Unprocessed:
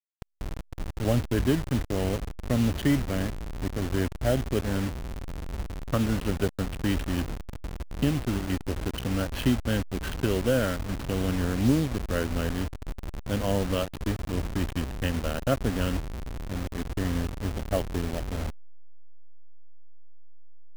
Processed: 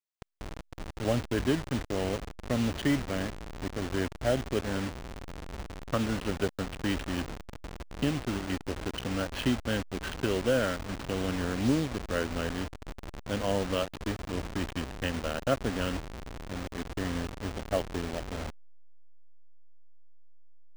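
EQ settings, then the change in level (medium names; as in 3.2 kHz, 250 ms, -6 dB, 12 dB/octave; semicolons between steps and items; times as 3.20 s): bass shelf 220 Hz -8.5 dB; peaking EQ 14 kHz -11.5 dB 0.65 oct; 0.0 dB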